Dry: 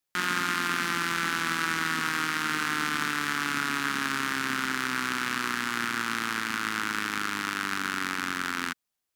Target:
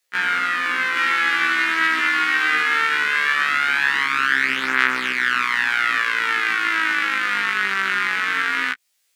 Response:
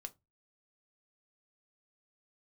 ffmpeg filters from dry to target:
-filter_complex "[0:a]equalizer=frequency=125:width_type=o:width=1:gain=-8,equalizer=frequency=250:width_type=o:width=1:gain=-4,equalizer=frequency=500:width_type=o:width=1:gain=7,equalizer=frequency=2000:width_type=o:width=1:gain=9,equalizer=frequency=4000:width_type=o:width=1:gain=4,equalizer=frequency=8000:width_type=o:width=1:gain=4,alimiter=limit=-10dB:level=0:latency=1:release=476,asetnsamples=nb_out_samples=441:pad=0,asendcmd='0.97 highshelf g 11',highshelf=frequency=2300:gain=4,acrossover=split=2900[link_01][link_02];[link_02]acompressor=threshold=-42dB:ratio=4:attack=1:release=60[link_03];[link_01][link_03]amix=inputs=2:normalize=0,afftfilt=real='re*1.73*eq(mod(b,3),0)':imag='im*1.73*eq(mod(b,3),0)':win_size=2048:overlap=0.75,volume=6.5dB"

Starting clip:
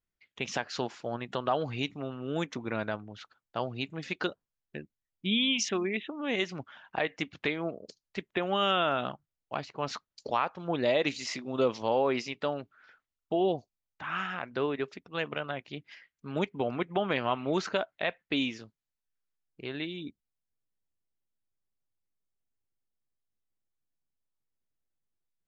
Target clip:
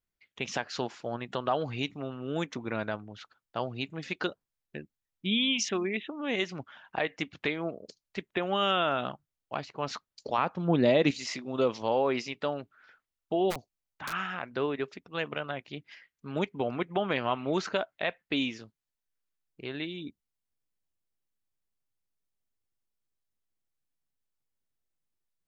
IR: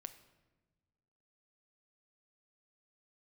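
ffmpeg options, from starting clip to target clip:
-filter_complex "[0:a]asettb=1/sr,asplit=3[link_01][link_02][link_03];[link_01]atrim=end=10.384[link_04];[link_02]atrim=start=10.38:end=11.11,asetpts=PTS-STARTPTS,afade=type=in:duration=0.004:curve=qsin,afade=type=out:start_time=0.726:duration=0.004:curve=qsin,equalizer=frequency=180:width=0.62:gain=10.5[link_05];[link_03]atrim=start=11.106[link_06];[link_04][link_05]acrossfade=duration=0.004:curve1=hsin:curve2=qsin[link_07];[link_07][link_06]acrossfade=duration=0.004:curve1=qsin:curve2=hsin,asplit=3[link_08][link_09][link_10];[link_08]afade=type=out:start_time=13.5:duration=0.02[link_11];[link_09]aeval=exprs='(mod(25.1*val(0)+1,2)-1)/25.1':channel_layout=same,afade=type=in:start_time=13.5:duration=0.02,afade=type=out:start_time=14.11:duration=0.02[link_12];[link_10]afade=type=in:start_time=14.11:duration=0.02[link_13];[link_11][link_12][link_13]amix=inputs=3:normalize=0"

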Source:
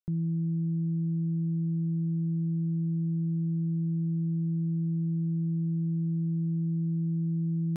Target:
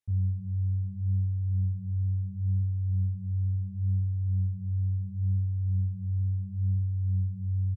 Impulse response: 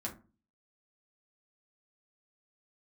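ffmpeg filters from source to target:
-filter_complex "[0:a]flanger=delay=16.5:depth=6.7:speed=0.72,asetrate=25476,aresample=44100,atempo=1.73107,asplit=2[link_01][link_02];[1:a]atrim=start_sample=2205,adelay=66[link_03];[link_02][link_03]afir=irnorm=-1:irlink=0,volume=-18dB[link_04];[link_01][link_04]amix=inputs=2:normalize=0,volume=4.5dB"

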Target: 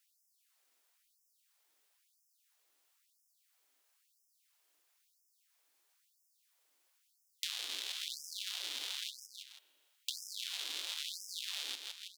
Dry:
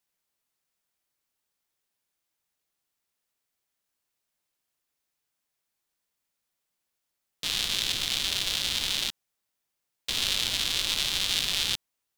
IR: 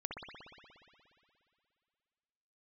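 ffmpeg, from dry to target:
-filter_complex "[0:a]aecho=1:1:162|324|486:0.316|0.0822|0.0214,acompressor=threshold=-43dB:ratio=8,asplit=2[link_01][link_02];[1:a]atrim=start_sample=2205,adelay=117[link_03];[link_02][link_03]afir=irnorm=-1:irlink=0,volume=-20.5dB[link_04];[link_01][link_04]amix=inputs=2:normalize=0,afftfilt=real='re*gte(b*sr/1024,230*pow(5100/230,0.5+0.5*sin(2*PI*1*pts/sr)))':imag='im*gte(b*sr/1024,230*pow(5100/230,0.5+0.5*sin(2*PI*1*pts/sr)))':win_size=1024:overlap=0.75,volume=6.5dB"

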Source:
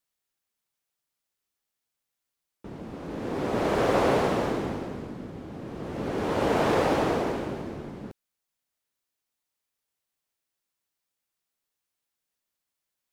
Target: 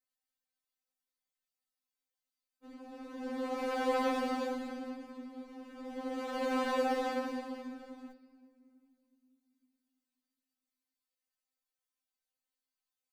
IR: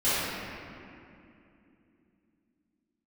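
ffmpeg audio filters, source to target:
-filter_complex "[0:a]asplit=2[link_01][link_02];[link_02]lowpass=frequency=4800:width_type=q:width=15[link_03];[1:a]atrim=start_sample=2205[link_04];[link_03][link_04]afir=irnorm=-1:irlink=0,volume=-30dB[link_05];[link_01][link_05]amix=inputs=2:normalize=0,afftfilt=real='re*3.46*eq(mod(b,12),0)':imag='im*3.46*eq(mod(b,12),0)':win_size=2048:overlap=0.75,volume=-6.5dB"

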